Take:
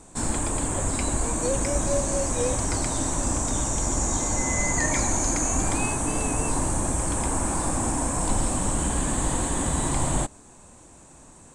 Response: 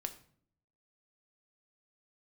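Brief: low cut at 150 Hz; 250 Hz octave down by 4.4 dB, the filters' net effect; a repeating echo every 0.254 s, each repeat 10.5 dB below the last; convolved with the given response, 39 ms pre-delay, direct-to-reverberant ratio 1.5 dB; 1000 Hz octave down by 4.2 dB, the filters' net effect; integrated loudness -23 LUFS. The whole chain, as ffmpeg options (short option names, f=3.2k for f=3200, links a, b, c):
-filter_complex "[0:a]highpass=150,equalizer=f=250:t=o:g=-4.5,equalizer=f=1k:t=o:g=-5,aecho=1:1:254|508|762:0.299|0.0896|0.0269,asplit=2[a][b];[1:a]atrim=start_sample=2205,adelay=39[c];[b][c]afir=irnorm=-1:irlink=0,volume=0dB[d];[a][d]amix=inputs=2:normalize=0,volume=1dB"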